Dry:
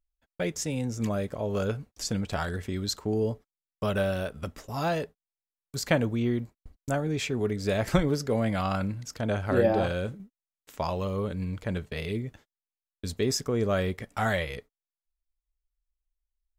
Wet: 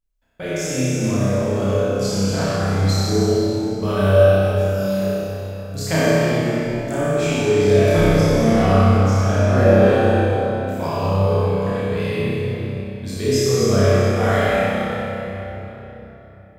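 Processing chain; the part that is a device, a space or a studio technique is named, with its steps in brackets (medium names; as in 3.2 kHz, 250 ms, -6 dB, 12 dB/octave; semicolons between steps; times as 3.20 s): 4.53–5.02 s: differentiator; tunnel (flutter echo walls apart 5.3 m, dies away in 0.88 s; reverberation RT60 3.9 s, pre-delay 16 ms, DRR -7.5 dB); trim -2 dB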